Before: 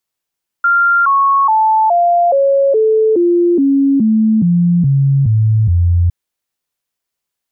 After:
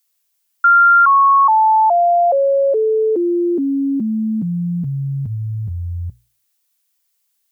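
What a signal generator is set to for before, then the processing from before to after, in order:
stepped sweep 1,390 Hz down, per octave 3, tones 13, 0.42 s, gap 0.00 s −8 dBFS
spectral tilt +3.5 dB per octave
mains-hum notches 60/120 Hz

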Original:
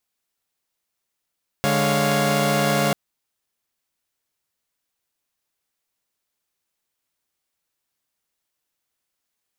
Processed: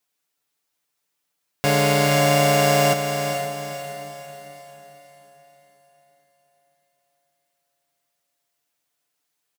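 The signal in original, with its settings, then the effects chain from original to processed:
held notes D3/G#3/C#5/F5 saw, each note −21 dBFS 1.29 s
low-shelf EQ 68 Hz −11 dB
comb filter 6.8 ms, depth 78%
on a send: feedback delay with all-pass diffusion 457 ms, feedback 45%, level −7 dB

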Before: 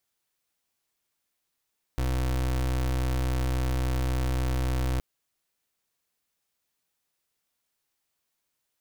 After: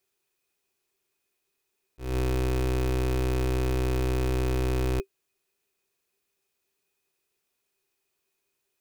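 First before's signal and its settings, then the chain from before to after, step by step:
pulse wave 63.6 Hz, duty 31% −26.5 dBFS 3.02 s
volume swells 194 ms
hollow resonant body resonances 390/2,500 Hz, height 17 dB, ringing for 85 ms

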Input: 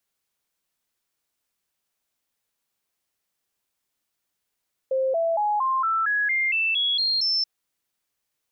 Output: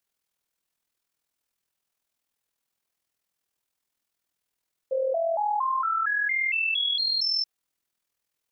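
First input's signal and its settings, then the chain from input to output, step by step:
stepped sweep 527 Hz up, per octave 3, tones 11, 0.23 s, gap 0.00 s −20 dBFS
amplitude modulation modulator 41 Hz, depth 40%

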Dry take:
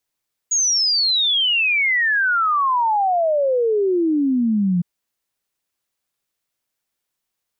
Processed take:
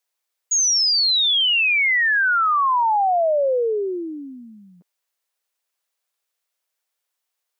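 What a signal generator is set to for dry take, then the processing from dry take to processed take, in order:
exponential sine sweep 6,800 Hz → 170 Hz 4.31 s −15 dBFS
high-pass filter 440 Hz 24 dB per octave

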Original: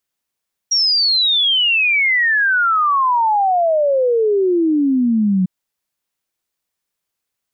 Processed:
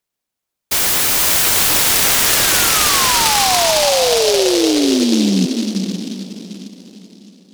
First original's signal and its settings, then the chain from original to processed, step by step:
exponential sine sweep 5,700 Hz → 180 Hz 4.75 s −12 dBFS
feedback delay with all-pass diffusion 483 ms, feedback 41%, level −5 dB
short delay modulated by noise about 4,200 Hz, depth 0.18 ms

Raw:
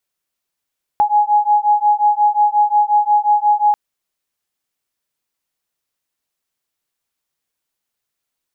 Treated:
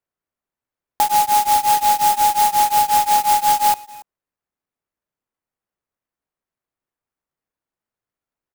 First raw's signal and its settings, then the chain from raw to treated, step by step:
two tones that beat 832 Hz, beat 5.6 Hz, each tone −14 dBFS 2.74 s
high-frequency loss of the air 410 metres
far-end echo of a speakerphone 280 ms, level −18 dB
converter with an unsteady clock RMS 0.073 ms

